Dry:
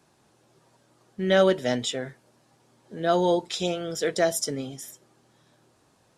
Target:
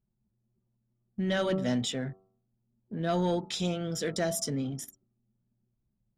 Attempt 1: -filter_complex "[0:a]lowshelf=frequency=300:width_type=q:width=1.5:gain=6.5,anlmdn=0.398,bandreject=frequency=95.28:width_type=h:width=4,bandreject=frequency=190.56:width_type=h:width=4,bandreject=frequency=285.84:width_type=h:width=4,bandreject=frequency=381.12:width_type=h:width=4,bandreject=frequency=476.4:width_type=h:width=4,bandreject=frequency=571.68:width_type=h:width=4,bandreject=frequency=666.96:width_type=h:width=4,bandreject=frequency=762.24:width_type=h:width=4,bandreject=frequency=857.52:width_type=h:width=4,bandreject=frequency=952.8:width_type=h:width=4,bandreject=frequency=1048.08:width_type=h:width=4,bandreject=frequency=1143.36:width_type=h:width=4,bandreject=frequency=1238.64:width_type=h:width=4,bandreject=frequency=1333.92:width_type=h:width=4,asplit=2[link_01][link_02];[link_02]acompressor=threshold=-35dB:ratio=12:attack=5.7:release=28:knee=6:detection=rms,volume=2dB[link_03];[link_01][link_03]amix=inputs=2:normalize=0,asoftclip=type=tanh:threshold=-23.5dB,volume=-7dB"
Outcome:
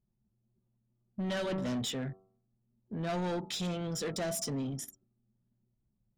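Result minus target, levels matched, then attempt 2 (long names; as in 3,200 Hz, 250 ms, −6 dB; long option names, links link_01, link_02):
soft clipping: distortion +13 dB
-filter_complex "[0:a]lowshelf=frequency=300:width_type=q:width=1.5:gain=6.5,anlmdn=0.398,bandreject=frequency=95.28:width_type=h:width=4,bandreject=frequency=190.56:width_type=h:width=4,bandreject=frequency=285.84:width_type=h:width=4,bandreject=frequency=381.12:width_type=h:width=4,bandreject=frequency=476.4:width_type=h:width=4,bandreject=frequency=571.68:width_type=h:width=4,bandreject=frequency=666.96:width_type=h:width=4,bandreject=frequency=762.24:width_type=h:width=4,bandreject=frequency=857.52:width_type=h:width=4,bandreject=frequency=952.8:width_type=h:width=4,bandreject=frequency=1048.08:width_type=h:width=4,bandreject=frequency=1143.36:width_type=h:width=4,bandreject=frequency=1238.64:width_type=h:width=4,bandreject=frequency=1333.92:width_type=h:width=4,asplit=2[link_01][link_02];[link_02]acompressor=threshold=-35dB:ratio=12:attack=5.7:release=28:knee=6:detection=rms,volume=2dB[link_03];[link_01][link_03]amix=inputs=2:normalize=0,asoftclip=type=tanh:threshold=-12dB,volume=-7dB"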